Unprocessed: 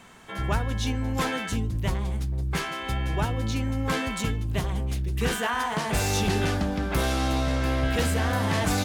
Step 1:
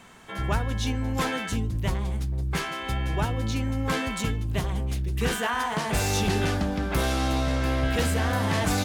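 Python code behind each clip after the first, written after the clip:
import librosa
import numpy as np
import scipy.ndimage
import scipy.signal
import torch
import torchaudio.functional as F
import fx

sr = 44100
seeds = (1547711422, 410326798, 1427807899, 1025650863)

y = x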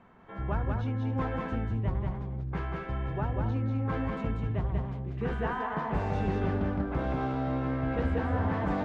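y = scipy.signal.sosfilt(scipy.signal.butter(2, 1300.0, 'lowpass', fs=sr, output='sos'), x)
y = fx.echo_multitap(y, sr, ms=(190, 264), db=(-3.0, -13.5))
y = y * 10.0 ** (-5.0 / 20.0)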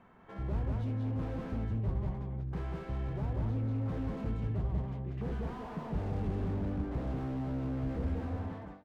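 y = fx.fade_out_tail(x, sr, length_s=0.82)
y = fx.dynamic_eq(y, sr, hz=1400.0, q=1.1, threshold_db=-49.0, ratio=4.0, max_db=-5)
y = fx.slew_limit(y, sr, full_power_hz=7.4)
y = y * 10.0 ** (-2.5 / 20.0)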